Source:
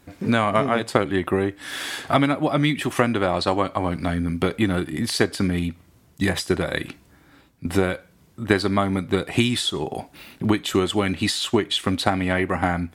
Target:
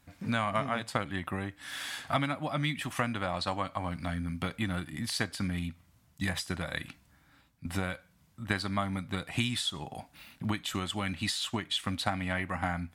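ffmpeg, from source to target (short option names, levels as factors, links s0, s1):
-af "equalizer=f=390:t=o:w=0.81:g=-14,volume=0.398"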